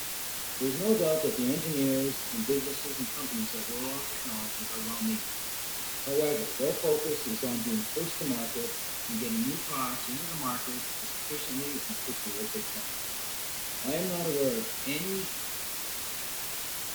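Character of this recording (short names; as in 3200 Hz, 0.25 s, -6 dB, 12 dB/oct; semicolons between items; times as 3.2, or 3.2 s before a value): phasing stages 2, 0.17 Hz, lowest notch 510–1500 Hz; a quantiser's noise floor 6-bit, dither triangular; Vorbis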